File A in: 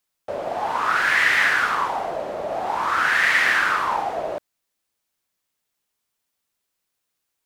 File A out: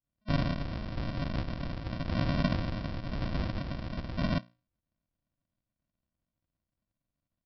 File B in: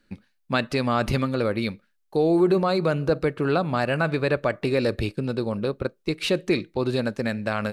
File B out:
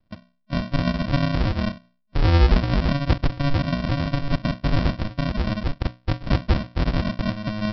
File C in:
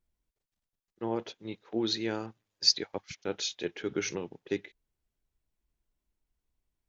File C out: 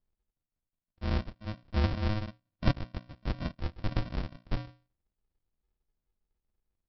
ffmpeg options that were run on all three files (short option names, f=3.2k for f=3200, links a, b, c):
-af "bandreject=f=60:t=h:w=6,bandreject=f=120:t=h:w=6,bandreject=f=180:t=h:w=6,bandreject=f=240:t=h:w=6,bandreject=f=300:t=h:w=6,afftfilt=real='re*(1-between(b*sr/4096,630,2800))':imag='im*(1-between(b*sr/4096,630,2800))':win_size=4096:overlap=0.75,adynamicequalizer=threshold=0.0158:dfrequency=320:dqfactor=0.83:tfrequency=320:tqfactor=0.83:attack=5:release=100:ratio=0.375:range=2.5:mode=boostabove:tftype=bell,aresample=11025,acrusher=samples=26:mix=1:aa=0.000001,aresample=44100"